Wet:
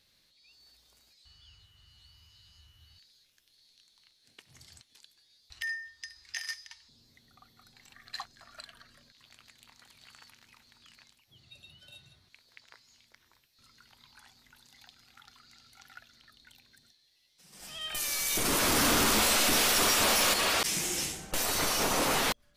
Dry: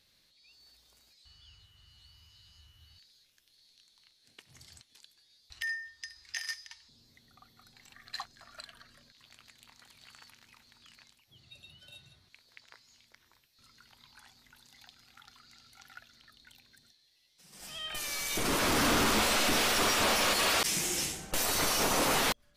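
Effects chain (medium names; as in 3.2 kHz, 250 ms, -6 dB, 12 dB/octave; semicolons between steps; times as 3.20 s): 17.81–20.34 s: treble shelf 6 kHz +8.5 dB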